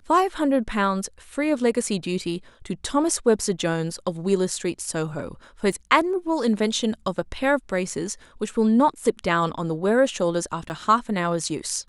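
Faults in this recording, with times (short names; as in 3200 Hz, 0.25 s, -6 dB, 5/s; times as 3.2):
5.72 gap 4.7 ms
10.69–10.7 gap 9.2 ms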